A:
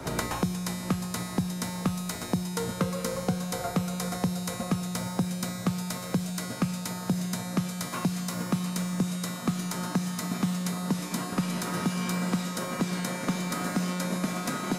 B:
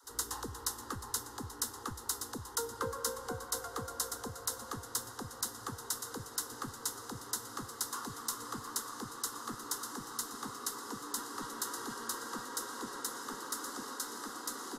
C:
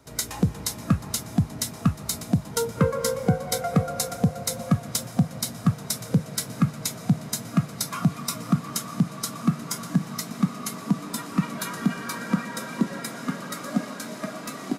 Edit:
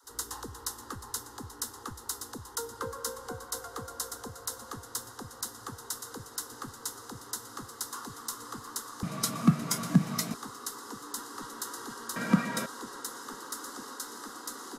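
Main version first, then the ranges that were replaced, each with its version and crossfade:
B
9.03–10.34 from C
12.16–12.66 from C
not used: A

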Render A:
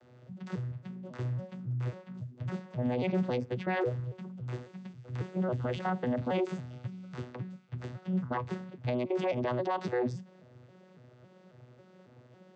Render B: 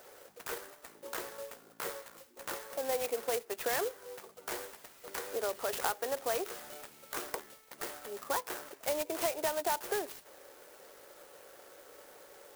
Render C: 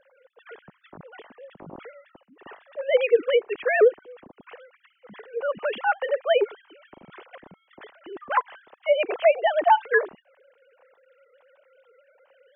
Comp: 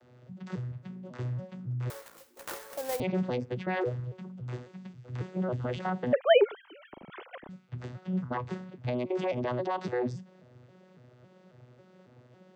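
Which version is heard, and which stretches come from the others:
A
1.9–3 from B
6.13–7.49 from C

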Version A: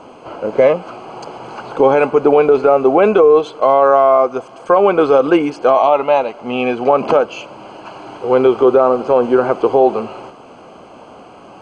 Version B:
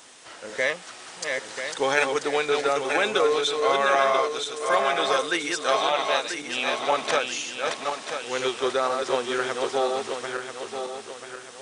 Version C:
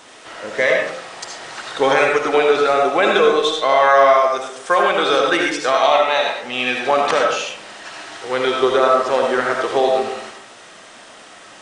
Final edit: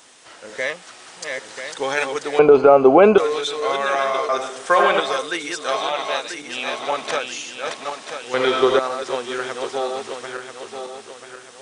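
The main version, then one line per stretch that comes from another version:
B
2.39–3.18 from A
4.29–5 from C
8.34–8.79 from C

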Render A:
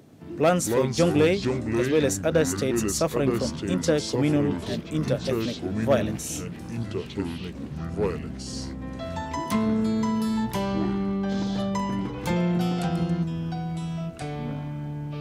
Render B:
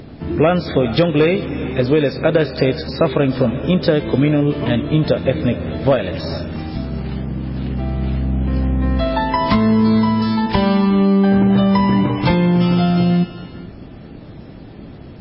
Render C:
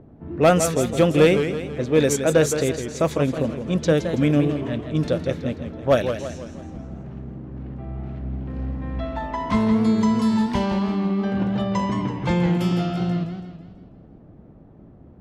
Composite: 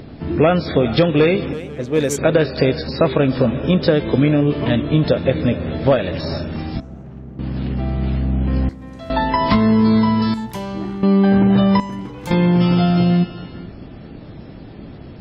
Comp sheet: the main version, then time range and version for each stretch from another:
B
1.53–2.18 from C
6.8–7.39 from C
8.69–9.1 from A
10.34–11.03 from A
11.8–12.31 from A

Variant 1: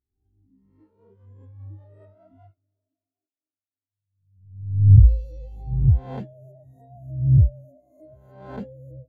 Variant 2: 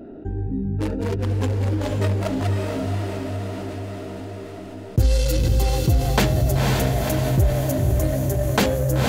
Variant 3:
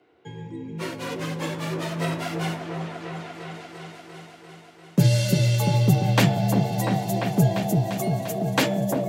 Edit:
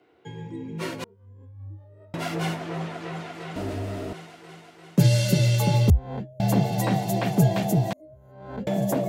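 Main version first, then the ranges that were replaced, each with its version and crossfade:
3
1.04–2.14 from 1
3.56–4.13 from 2
5.9–6.4 from 1
7.93–8.67 from 1

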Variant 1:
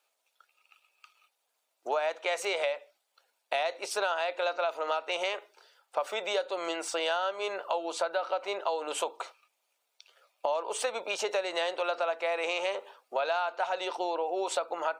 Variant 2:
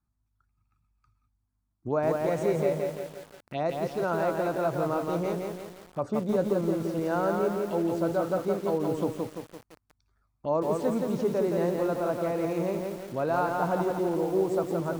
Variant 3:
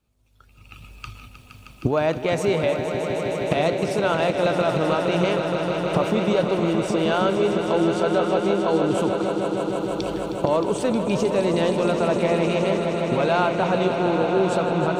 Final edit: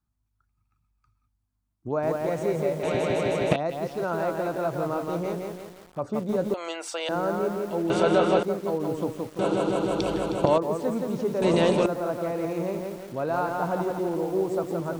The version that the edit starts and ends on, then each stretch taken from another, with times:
2
2.83–3.56 from 3
6.54–7.09 from 1
7.9–8.43 from 3
9.39–10.58 from 3
11.42–11.86 from 3

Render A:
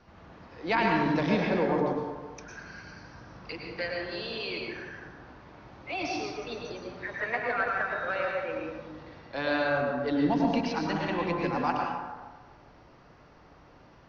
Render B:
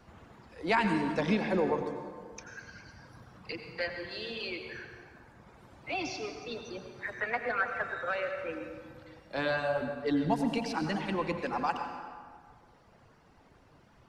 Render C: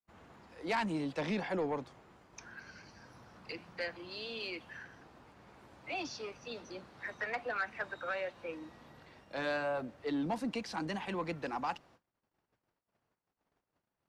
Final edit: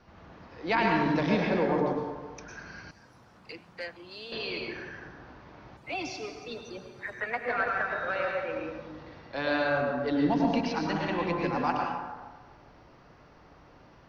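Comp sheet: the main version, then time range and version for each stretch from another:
A
2.91–4.32 from C
5.77–7.48 from B

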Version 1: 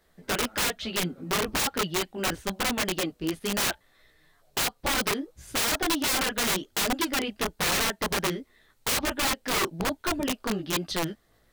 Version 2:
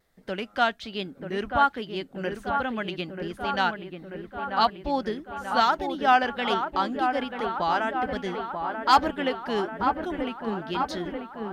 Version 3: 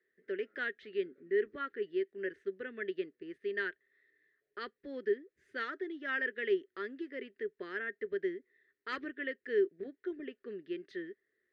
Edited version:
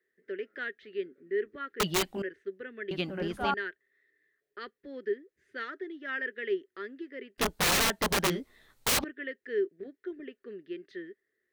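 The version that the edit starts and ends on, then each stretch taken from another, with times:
3
1.8–2.22 from 1
2.91–3.54 from 2
7.38–9.04 from 1

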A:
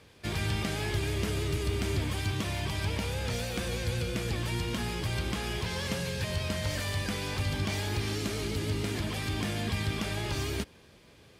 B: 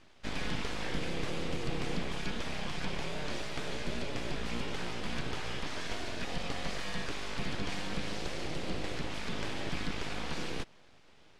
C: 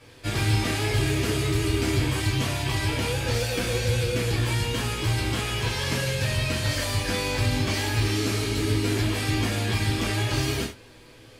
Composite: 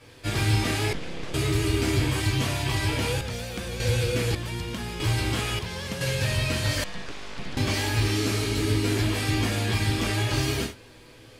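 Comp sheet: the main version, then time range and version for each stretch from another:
C
0.93–1.34 from B
3.21–3.8 from A
4.35–5 from A
5.59–6.01 from A
6.84–7.57 from B

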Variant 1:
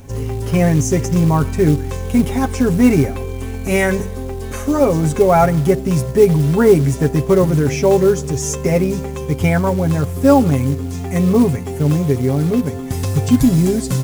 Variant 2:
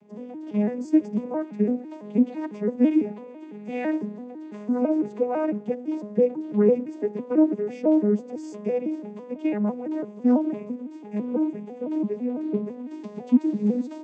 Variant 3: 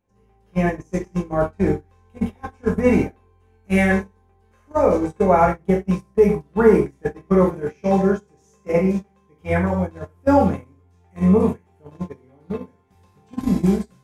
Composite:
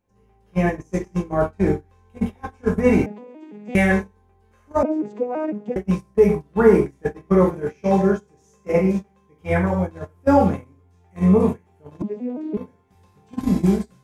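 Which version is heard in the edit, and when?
3
3.06–3.75 from 2
4.83–5.76 from 2
12.02–12.57 from 2
not used: 1

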